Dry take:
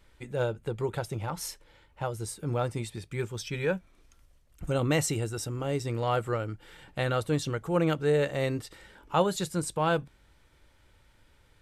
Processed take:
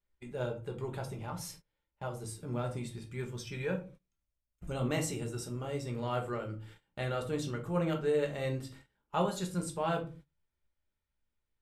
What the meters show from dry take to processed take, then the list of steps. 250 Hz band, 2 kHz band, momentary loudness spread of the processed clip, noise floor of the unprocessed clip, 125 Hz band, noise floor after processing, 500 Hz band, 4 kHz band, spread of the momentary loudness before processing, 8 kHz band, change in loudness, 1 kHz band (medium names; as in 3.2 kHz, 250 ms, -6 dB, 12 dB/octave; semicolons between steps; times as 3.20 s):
-5.0 dB, -7.5 dB, 12 LU, -63 dBFS, -5.5 dB, -85 dBFS, -6.0 dB, -7.0 dB, 11 LU, -7.0 dB, -6.0 dB, -6.0 dB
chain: simulated room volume 210 m³, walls furnished, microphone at 1.3 m; gate -43 dBFS, range -21 dB; trim -8.5 dB